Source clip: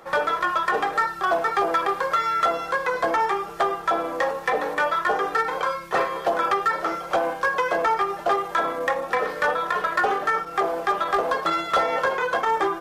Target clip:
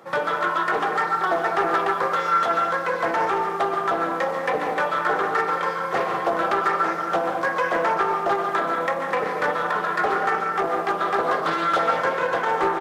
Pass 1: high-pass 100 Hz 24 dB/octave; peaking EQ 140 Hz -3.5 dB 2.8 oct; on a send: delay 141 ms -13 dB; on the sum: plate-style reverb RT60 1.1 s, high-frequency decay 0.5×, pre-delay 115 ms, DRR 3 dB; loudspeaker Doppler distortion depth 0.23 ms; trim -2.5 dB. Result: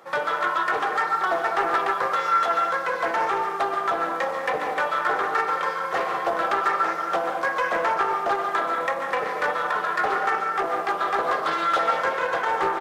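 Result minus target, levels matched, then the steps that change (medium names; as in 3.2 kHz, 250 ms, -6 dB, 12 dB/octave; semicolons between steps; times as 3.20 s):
125 Hz band -7.0 dB
change: peaking EQ 140 Hz +6 dB 2.8 oct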